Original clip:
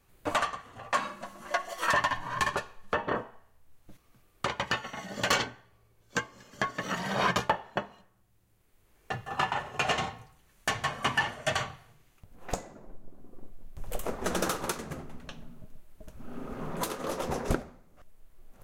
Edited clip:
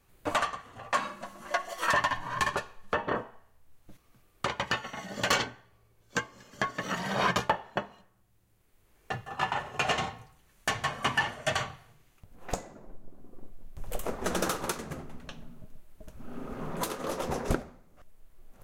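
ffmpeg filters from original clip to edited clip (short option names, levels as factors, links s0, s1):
-filter_complex "[0:a]asplit=2[s0][s1];[s0]atrim=end=9.41,asetpts=PTS-STARTPTS,afade=t=out:st=9.16:d=0.25:silence=0.501187[s2];[s1]atrim=start=9.41,asetpts=PTS-STARTPTS,afade=t=in:d=0.004:c=hsin:silence=0.501187[s3];[s2][s3]concat=n=2:v=0:a=1"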